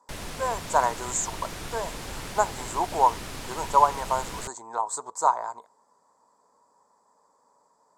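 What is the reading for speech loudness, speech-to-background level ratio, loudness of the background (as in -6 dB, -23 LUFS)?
-27.0 LUFS, 10.0 dB, -37.0 LUFS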